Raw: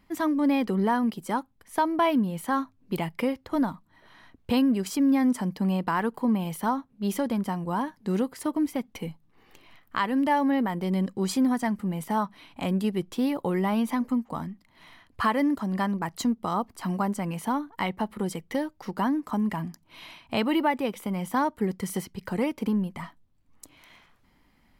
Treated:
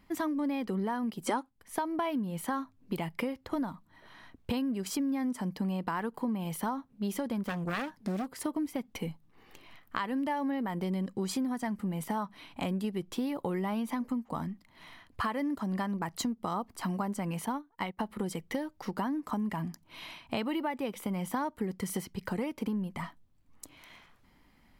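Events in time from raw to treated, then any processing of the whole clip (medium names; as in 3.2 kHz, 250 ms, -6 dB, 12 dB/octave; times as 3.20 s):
1.27–1.49 s: time-frequency box 220–11000 Hz +12 dB
7.44–8.30 s: self-modulated delay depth 0.58 ms
17.46–17.99 s: upward expansion 2.5:1, over -36 dBFS
whole clip: compression 5:1, threshold -30 dBFS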